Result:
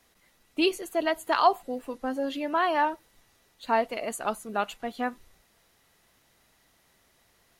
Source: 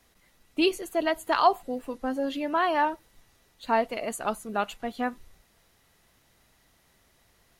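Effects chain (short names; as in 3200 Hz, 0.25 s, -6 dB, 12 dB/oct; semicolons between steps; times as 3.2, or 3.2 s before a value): low shelf 150 Hz -6.5 dB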